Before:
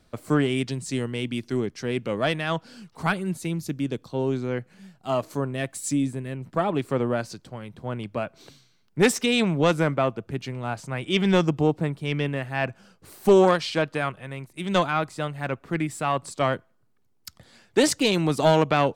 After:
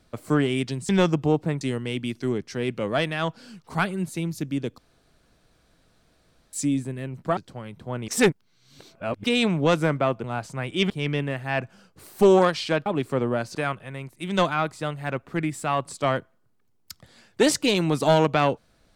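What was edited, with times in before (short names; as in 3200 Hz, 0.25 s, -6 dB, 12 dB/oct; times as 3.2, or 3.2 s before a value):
4.06–5.81 room tone
6.65–7.34 move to 13.92
8.05–9.21 reverse
10.21–10.58 cut
11.24–11.96 move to 0.89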